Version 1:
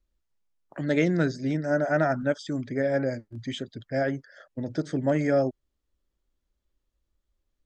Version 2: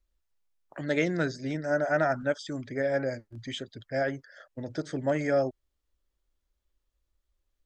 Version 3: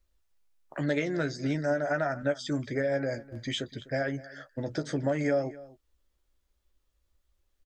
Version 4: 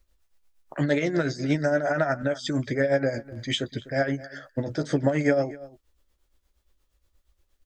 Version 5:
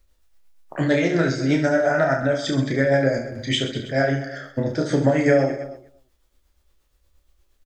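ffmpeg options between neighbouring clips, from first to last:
ffmpeg -i in.wav -af "equalizer=frequency=200:width=0.7:gain=-7" out.wav
ffmpeg -i in.wav -filter_complex "[0:a]acompressor=threshold=-30dB:ratio=6,asplit=2[link_01][link_02];[link_02]adelay=14,volume=-8.5dB[link_03];[link_01][link_03]amix=inputs=2:normalize=0,asplit=2[link_04][link_05];[link_05]adelay=250.7,volume=-19dB,highshelf=frequency=4000:gain=-5.64[link_06];[link_04][link_06]amix=inputs=2:normalize=0,volume=4dB" out.wav
ffmpeg -i in.wav -af "tremolo=f=8.5:d=0.62,volume=8dB" out.wav
ffmpeg -i in.wav -af "aecho=1:1:30|72|130.8|213.1|328.4:0.631|0.398|0.251|0.158|0.1,volume=3dB" out.wav

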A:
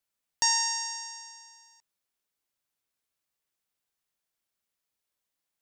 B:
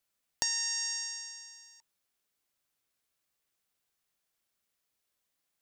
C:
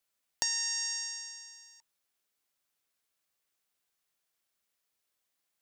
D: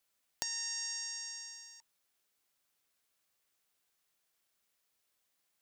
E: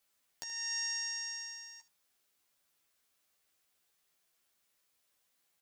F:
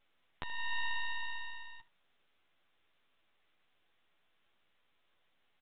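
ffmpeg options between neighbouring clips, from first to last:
ffmpeg -i in.wav -af "bandreject=frequency=920:width=18,acompressor=threshold=-32dB:ratio=6,volume=3dB" out.wav
ffmpeg -i in.wav -af "lowshelf=frequency=260:gain=-5.5" out.wav
ffmpeg -i in.wav -af "acompressor=threshold=-42dB:ratio=2.5,volume=2.5dB" out.wav
ffmpeg -i in.wav -af "aecho=1:1:12|78:0.631|0.15,alimiter=limit=-24dB:level=0:latency=1:release=342,volume=1dB" out.wav
ffmpeg -i in.wav -af "aeval=exprs='max(val(0),0)':channel_layout=same,aresample=8000,aresample=44100,volume=10dB" out.wav

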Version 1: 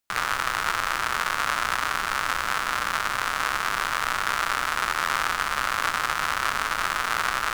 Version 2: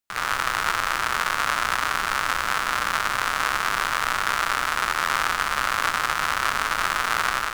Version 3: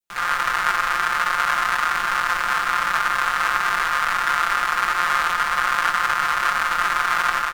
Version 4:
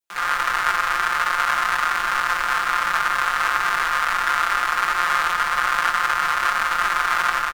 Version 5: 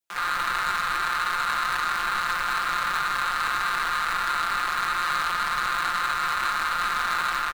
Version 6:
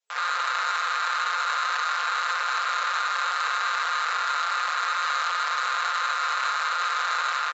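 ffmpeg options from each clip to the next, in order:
ffmpeg -i in.wav -af "dynaudnorm=framelen=130:gausssize=3:maxgain=11.5dB,volume=-4.5dB" out.wav
ffmpeg -i in.wav -af "aecho=1:1:5.7:0.98,adynamicequalizer=threshold=0.0224:dfrequency=1400:dqfactor=0.79:tfrequency=1400:tqfactor=0.79:attack=5:release=100:ratio=0.375:range=3.5:mode=boostabove:tftype=bell,volume=-5.5dB" out.wav
ffmpeg -i in.wav -filter_complex "[0:a]acrossover=split=170[link_01][link_02];[link_01]adelay=40[link_03];[link_03][link_02]amix=inputs=2:normalize=0" out.wav
ffmpeg -i in.wav -af "asoftclip=type=tanh:threshold=-19.5dB" out.wav
ffmpeg -i in.wav -af "asoftclip=type=tanh:threshold=-23.5dB,afftfilt=real='re*between(b*sr/4096,420,7700)':imag='im*between(b*sr/4096,420,7700)':win_size=4096:overlap=0.75,volume=3dB" out.wav

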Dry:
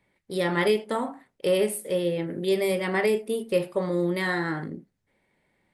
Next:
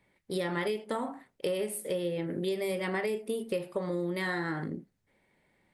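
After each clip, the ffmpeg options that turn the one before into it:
ffmpeg -i in.wav -af "acompressor=threshold=-29dB:ratio=6" out.wav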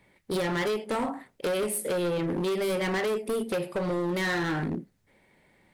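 ffmpeg -i in.wav -af "asoftclip=type=hard:threshold=-32.5dB,volume=7.5dB" out.wav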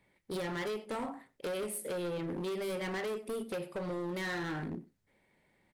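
ffmpeg -i in.wav -af "aecho=1:1:94:0.0841,volume=-8.5dB" out.wav

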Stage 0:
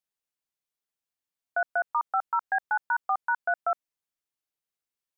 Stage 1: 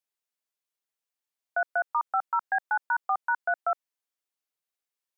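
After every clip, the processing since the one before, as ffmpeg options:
ffmpeg -i in.wav -af "highpass=320" out.wav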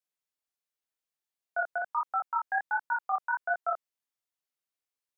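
ffmpeg -i in.wav -af "flanger=delay=18.5:depth=6.9:speed=1.4" out.wav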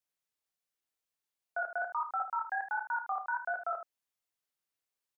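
ffmpeg -i in.wav -filter_complex "[0:a]alimiter=level_in=2.5dB:limit=-24dB:level=0:latency=1:release=29,volume=-2.5dB,asplit=2[link_01][link_02];[link_02]aecho=0:1:32|77:0.335|0.299[link_03];[link_01][link_03]amix=inputs=2:normalize=0" out.wav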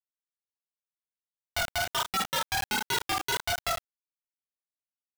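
ffmpeg -i in.wav -af "aeval=exprs='(mod(23.7*val(0)+1,2)-1)/23.7':channel_layout=same,aeval=exprs='val(0)+0.000891*(sin(2*PI*60*n/s)+sin(2*PI*2*60*n/s)/2+sin(2*PI*3*60*n/s)/3+sin(2*PI*4*60*n/s)/4+sin(2*PI*5*60*n/s)/5)':channel_layout=same,acrusher=bits=5:mix=0:aa=0.000001,volume=5dB" out.wav

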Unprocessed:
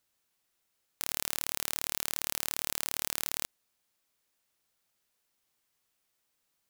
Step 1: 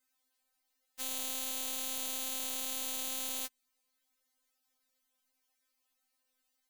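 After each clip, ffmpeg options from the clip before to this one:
ffmpeg -i in.wav -af "afftfilt=real='re*3.46*eq(mod(b,12),0)':imag='im*3.46*eq(mod(b,12),0)':win_size=2048:overlap=0.75" out.wav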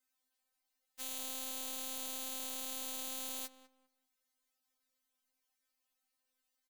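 ffmpeg -i in.wav -filter_complex "[0:a]asplit=2[link_01][link_02];[link_02]adelay=199,lowpass=frequency=1600:poles=1,volume=-12dB,asplit=2[link_03][link_04];[link_04]adelay=199,lowpass=frequency=1600:poles=1,volume=0.28,asplit=2[link_05][link_06];[link_06]adelay=199,lowpass=frequency=1600:poles=1,volume=0.28[link_07];[link_01][link_03][link_05][link_07]amix=inputs=4:normalize=0,volume=-4.5dB" out.wav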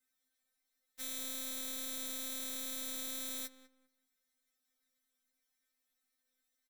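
ffmpeg -i in.wav -af "aecho=1:1:4.4:0.81,volume=-1.5dB" out.wav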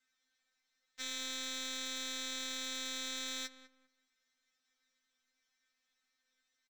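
ffmpeg -i in.wav -af "firequalizer=gain_entry='entry(380,0);entry(1600,8);entry(6700,4);entry(10000,-16)':delay=0.05:min_phase=1" out.wav

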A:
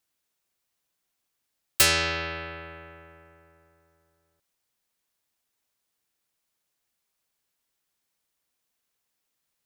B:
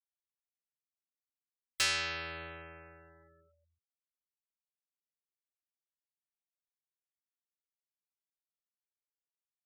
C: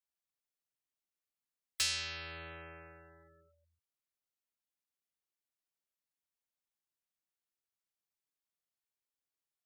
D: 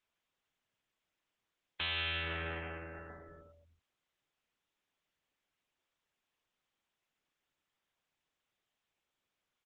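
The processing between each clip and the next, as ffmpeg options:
ffmpeg -i in.wav -filter_complex "[0:a]acrossover=split=8100[link_01][link_02];[link_02]acompressor=threshold=-37dB:ratio=4:attack=1:release=60[link_03];[link_01][link_03]amix=inputs=2:normalize=0,afftfilt=real='re*gte(hypot(re,im),0.00447)':imag='im*gte(hypot(re,im),0.00447)':win_size=1024:overlap=0.75,acrossover=split=970[link_04][link_05];[link_04]alimiter=level_in=8dB:limit=-24dB:level=0:latency=1,volume=-8dB[link_06];[link_06][link_05]amix=inputs=2:normalize=0,volume=-8dB" out.wav
ffmpeg -i in.wav -filter_complex "[0:a]acrossover=split=130|3000[link_01][link_02][link_03];[link_02]acompressor=threshold=-45dB:ratio=6[link_04];[link_01][link_04][link_03]amix=inputs=3:normalize=0" out.wav
ffmpeg -i in.wav -af "asoftclip=type=tanh:threshold=-37dB,aresample=8000,aresample=44100,volume=10.5dB" -ar 48000 -c:a libopus -b:a 10k out.opus

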